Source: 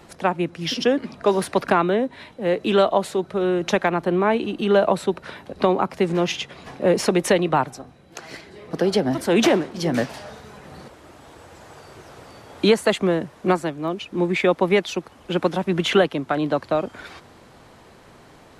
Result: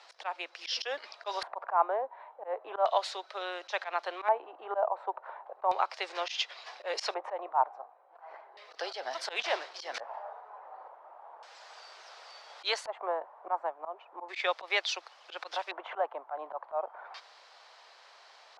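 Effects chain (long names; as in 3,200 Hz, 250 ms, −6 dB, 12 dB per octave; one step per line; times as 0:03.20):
inverse Chebyshev high-pass filter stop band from 190 Hz, stop band 60 dB
auto-filter low-pass square 0.35 Hz 900–4,900 Hz
volume swells 110 ms
level −5.5 dB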